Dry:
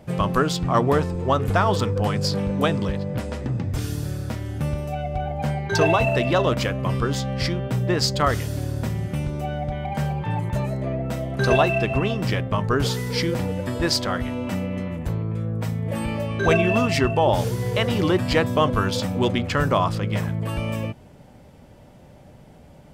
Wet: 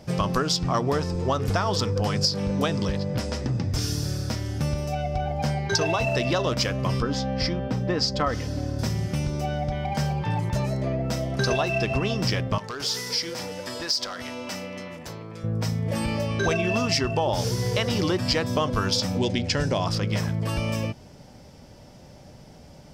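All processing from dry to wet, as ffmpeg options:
ffmpeg -i in.wav -filter_complex "[0:a]asettb=1/sr,asplit=3[link_01][link_02][link_03];[link_01]atrim=end=7.024[link_04];[link_02]atrim=start=7.02:end=8.79,asetpts=PTS-STARTPTS,afade=type=in:duration=0.004:curve=qsin,afade=type=out:start_time=1.766:duration=0.004:curve=qsin,lowpass=frequency=1600:poles=1,aecho=1:1:3.9:0.43,atrim=end_sample=78057[link_05];[link_03]atrim=start=8.786[link_06];[link_04][link_05]acrossfade=duration=0.004:curve1=hsin:curve2=qsin[link_07];[link_07][link_06]acrossfade=duration=0.004:curve1=qsin:curve2=hsin,asettb=1/sr,asplit=3[link_08][link_09][link_10];[link_08]atrim=end=12.584[link_11];[link_09]atrim=start=12.58:end=15.44,asetpts=PTS-STARTPTS,afade=type=in:duration=0.004:curve=qsin,afade=type=out:start_time=2.856:duration=0.004:curve=qsin,highpass=frequency=690:poles=1,acompressor=threshold=-28dB:ratio=8:attack=3.2:release=140:knee=1:detection=peak,asoftclip=type=hard:threshold=-28dB[link_12];[link_10]atrim=start=15.436[link_13];[link_11][link_12]acrossfade=duration=0.004:curve1=hsin:curve2=qsin[link_14];[link_14][link_13]acrossfade=duration=0.004:curve1=qsin:curve2=hsin,asettb=1/sr,asplit=3[link_15][link_16][link_17];[link_15]atrim=end=19.184[link_18];[link_16]atrim=start=19.18:end=19.87,asetpts=PTS-STARTPTS,afade=type=in:duration=0.004:curve=qsin,afade=type=out:start_time=0.686:duration=0.004:curve=qsin,lowpass=frequency=10000:width=0.5412,lowpass=frequency=10000:width=1.3066,equalizer=frequency=1200:width=3.7:gain=-15[link_19];[link_17]atrim=start=19.866[link_20];[link_18][link_19]acrossfade=duration=0.004:curve1=hsin:curve2=qsin[link_21];[link_21][link_20]acrossfade=duration=0.004:curve1=qsin:curve2=hsin,equalizer=frequency=5300:width=2.1:gain=14.5,acompressor=threshold=-20dB:ratio=6" out.wav

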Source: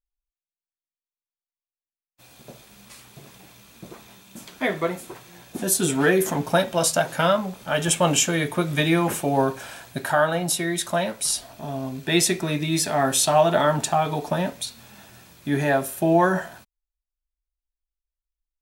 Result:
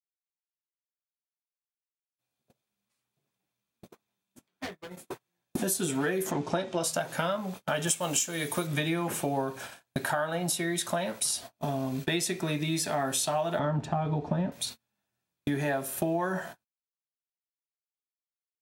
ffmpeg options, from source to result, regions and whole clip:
ffmpeg -i in.wav -filter_complex "[0:a]asettb=1/sr,asplit=3[link_01][link_02][link_03];[link_01]atrim=end=4.384[link_04];[link_02]atrim=start=4.38:end=4.97,asetpts=PTS-STARTPTS,afade=type=in:duration=0.004:curve=qsin,afade=type=out:start_time=0.586:duration=0.004:curve=qsin,aeval=exprs='0.1*(abs(mod(val(0)/0.1+3,4)-2)-1)':channel_layout=same,acrossover=split=130|3600[link_05][link_06][link_07];[link_05]acompressor=threshold=-47dB:ratio=4[link_08];[link_06]acompressor=threshold=-40dB:ratio=4[link_09];[link_07]acompressor=threshold=-52dB:ratio=4[link_10];[link_08][link_09][link_10]amix=inputs=3:normalize=0,asplit=2[link_11][link_12];[link_12]adelay=22,volume=-9dB[link_13];[link_11][link_13]amix=inputs=2:normalize=0,atrim=end_sample=26019[link_14];[link_03]atrim=start=4.966[link_15];[link_04][link_14]acrossfade=duration=0.004:curve1=hsin:curve2=qsin[link_16];[link_16][link_15]acrossfade=duration=0.004:curve1=qsin:curve2=hsin,asettb=1/sr,asplit=3[link_17][link_18][link_19];[link_17]atrim=end=6.314[link_20];[link_18]atrim=start=6.31:end=6.83,asetpts=PTS-STARTPTS,afade=type=in:duration=0.004:curve=qsin,afade=type=out:start_time=0.516:duration=0.004:curve=qsin,lowpass=frequency=7500:width=0.5412,lowpass=frequency=7500:width=1.3066,equalizer=frequency=360:width_type=o:width=0.35:gain=9,bandreject=frequency=1600:width=20[link_21];[link_19]atrim=start=6.826[link_22];[link_20][link_21]acrossfade=duration=0.004:curve1=hsin:curve2=qsin[link_23];[link_23][link_22]acrossfade=duration=0.004:curve1=qsin:curve2=hsin,asettb=1/sr,asplit=3[link_24][link_25][link_26];[link_24]atrim=end=7.874[link_27];[link_25]atrim=start=7.87:end=8.67,asetpts=PTS-STARTPTS,afade=type=in:duration=0.004:curve=qsin,afade=type=out:start_time=0.796:duration=0.004:curve=qsin,bass=frequency=250:gain=-3,treble=frequency=4000:gain=10,acrusher=bits=5:mode=log:mix=0:aa=0.000001[link_28];[link_26]atrim=start=8.666[link_29];[link_27][link_28]acrossfade=duration=0.004:curve1=hsin:curve2=qsin[link_30];[link_30][link_29]acrossfade=duration=0.004:curve1=qsin:curve2=hsin,asettb=1/sr,asplit=3[link_31][link_32][link_33];[link_31]atrim=end=13.594[link_34];[link_32]atrim=start=13.59:end=14.52,asetpts=PTS-STARTPTS,afade=type=in:duration=0.004:curve=qsin,afade=type=out:start_time=0.926:duration=0.004:curve=qsin,aemphasis=mode=reproduction:type=riaa,adynamicsmooth=sensitivity=4.5:basefreq=7600[link_35];[link_33]atrim=start=14.516[link_36];[link_34][link_35]acrossfade=duration=0.004:curve1=hsin:curve2=qsin[link_37];[link_37][link_36]acrossfade=duration=0.004:curve1=qsin:curve2=hsin,highpass=76,agate=range=-41dB:threshold=-36dB:ratio=16:detection=peak,acompressor=threshold=-32dB:ratio=6,volume=4.5dB" out.wav

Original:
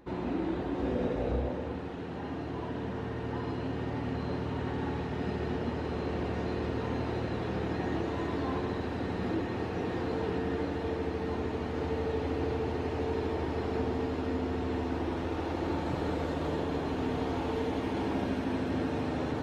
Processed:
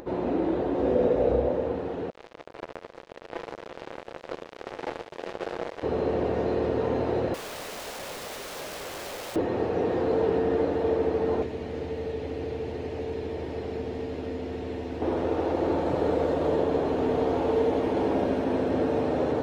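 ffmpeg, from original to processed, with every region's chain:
ffmpeg -i in.wav -filter_complex "[0:a]asettb=1/sr,asplit=3[link_01][link_02][link_03];[link_01]atrim=end=2.104[link_04];[link_02]atrim=start=2.1:end=5.83,asetpts=PTS-STARTPTS,afade=type=in:duration=0.004:curve=qsin,afade=type=out:start_time=3.726:duration=0.004:curve=qsin,highpass=360,aecho=1:1:6:0.51,atrim=end_sample=164493,acrusher=bits=4:mix=0:aa=0.5[link_05];[link_03]atrim=start=5.826[link_06];[link_04][link_05]acrossfade=duration=0.004:curve1=hsin:curve2=qsin[link_07];[link_07][link_06]acrossfade=duration=0.004:curve1=qsin:curve2=hsin,asettb=1/sr,asplit=3[link_08][link_09][link_10];[link_08]atrim=end=7.344[link_11];[link_09]atrim=start=7.34:end=9.36,asetpts=PTS-STARTPTS,afade=type=in:duration=0.004:curve=qsin,afade=type=out:start_time=2.016:duration=0.004:curve=qsin,asplit=9[link_12][link_13][link_14][link_15][link_16][link_17][link_18][link_19][link_20];[link_13]adelay=87,afreqshift=60,volume=-9dB[link_21];[link_14]adelay=174,afreqshift=120,volume=-13.2dB[link_22];[link_15]adelay=261,afreqshift=180,volume=-17.3dB[link_23];[link_16]adelay=348,afreqshift=240,volume=-21.5dB[link_24];[link_17]adelay=435,afreqshift=300,volume=-25.6dB[link_25];[link_18]adelay=522,afreqshift=360,volume=-29.8dB[link_26];[link_19]adelay=609,afreqshift=420,volume=-33.9dB[link_27];[link_20]adelay=696,afreqshift=480,volume=-38.1dB[link_28];[link_12][link_21][link_22][link_23][link_24][link_25][link_26][link_27][link_28]amix=inputs=9:normalize=0,atrim=end_sample=89082,aeval=exprs='(mod(63.1*val(0)+1,2)-1)/63.1':channel_layout=same[link_29];[link_10]atrim=start=9.356[link_30];[link_11][link_29]acrossfade=duration=0.004:curve1=hsin:curve2=qsin[link_31];[link_31][link_30]acrossfade=duration=0.004:curve1=qsin:curve2=hsin,asettb=1/sr,asplit=3[link_32][link_33][link_34];[link_32]atrim=end=11.424[link_35];[link_33]atrim=start=11.42:end=15.02,asetpts=PTS-STARTPTS,afade=type=in:duration=0.004:curve=qsin,afade=type=out:start_time=3.596:duration=0.004:curve=qsin,highshelf=frequency=1600:width_type=q:width=1.5:gain=6,acrossover=split=230|1400|3300[link_36][link_37][link_38][link_39];[link_36]acompressor=threshold=-38dB:ratio=3[link_40];[link_37]acompressor=threshold=-45dB:ratio=3[link_41];[link_38]acompressor=threshold=-58dB:ratio=3[link_42];[link_39]acompressor=threshold=-60dB:ratio=3[link_43];[link_40][link_41][link_42][link_43]amix=inputs=4:normalize=0[link_44];[link_34]atrim=start=15.016[link_45];[link_35][link_44]acrossfade=duration=0.004:curve1=hsin:curve2=qsin[link_46];[link_46][link_45]acrossfade=duration=0.004:curve1=qsin:curve2=hsin,equalizer=frequency=520:width_type=o:width=1.3:gain=12,acompressor=mode=upward:threshold=-38dB:ratio=2.5" out.wav

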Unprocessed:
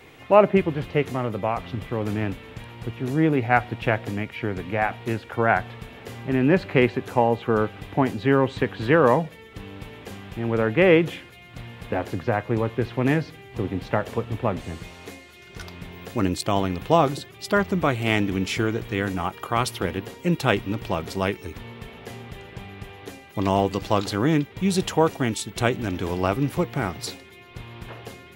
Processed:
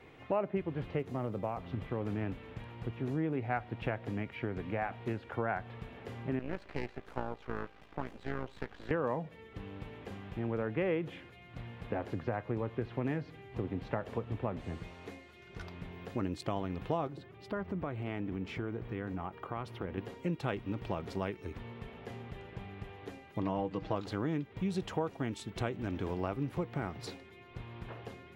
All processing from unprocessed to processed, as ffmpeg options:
ffmpeg -i in.wav -filter_complex "[0:a]asettb=1/sr,asplit=3[link_01][link_02][link_03];[link_01]atrim=end=0.994[link_04];[link_02]atrim=start=0.99:end=1.71,asetpts=PTS-STARTPTS,afade=type=in:duration=0.004:curve=qsin,afade=type=out:start_time=0.716:duration=0.004:curve=qsin,highpass=49,equalizer=frequency=2000:width_type=o:width=2:gain=-5,acrusher=bits=7:mode=log:mix=0:aa=0.000001[link_05];[link_03]atrim=start=1.706[link_06];[link_04][link_05]acrossfade=duration=0.004:curve1=hsin:curve2=qsin[link_07];[link_07][link_06]acrossfade=duration=0.004:curve1=qsin:curve2=hsin,asettb=1/sr,asplit=3[link_08][link_09][link_10];[link_08]atrim=end=6.394[link_11];[link_09]atrim=start=6.39:end=8.91,asetpts=PTS-STARTPTS,afade=type=in:duration=0.004:curve=qsin,afade=type=out:start_time=2.516:duration=0.004:curve=qsin,highpass=frequency=480:poles=1,aeval=exprs='max(val(0),0)':channel_layout=same,tremolo=f=56:d=0.571[link_12];[link_10]atrim=start=8.906[link_13];[link_11][link_12]acrossfade=duration=0.004:curve1=hsin:curve2=qsin[link_14];[link_14][link_13]acrossfade=duration=0.004:curve1=qsin:curve2=hsin,asettb=1/sr,asplit=3[link_15][link_16][link_17];[link_15]atrim=end=17.074[link_18];[link_16]atrim=start=17.07:end=19.98,asetpts=PTS-STARTPTS,afade=type=in:duration=0.004:curve=qsin,afade=type=out:start_time=2.906:duration=0.004:curve=qsin,equalizer=frequency=8300:width_type=o:width=2.4:gain=-11.5,acompressor=threshold=-30dB:ratio=2:attack=3.2:release=140:knee=1:detection=peak[link_19];[link_17]atrim=start=19.976[link_20];[link_18][link_19]acrossfade=duration=0.004:curve1=hsin:curve2=qsin[link_21];[link_21][link_20]acrossfade=duration=0.004:curve1=qsin:curve2=hsin,asettb=1/sr,asplit=3[link_22][link_23][link_24];[link_22]atrim=end=23.424[link_25];[link_23]atrim=start=23.42:end=23.96,asetpts=PTS-STARTPTS,afade=type=in:duration=0.004:curve=qsin,afade=type=out:start_time=0.536:duration=0.004:curve=qsin,acrossover=split=7500[link_26][link_27];[link_27]acompressor=threshold=-56dB:ratio=4:attack=1:release=60[link_28];[link_26][link_28]amix=inputs=2:normalize=0,aemphasis=mode=reproduction:type=50fm,aecho=1:1:6.4:0.55,atrim=end_sample=23814[link_29];[link_24]atrim=start=23.956[link_30];[link_25][link_29]acrossfade=duration=0.004:curve1=hsin:curve2=qsin[link_31];[link_31][link_30]acrossfade=duration=0.004:curve1=qsin:curve2=hsin,lowpass=frequency=1900:poles=1,acompressor=threshold=-26dB:ratio=3,volume=-6dB" out.wav

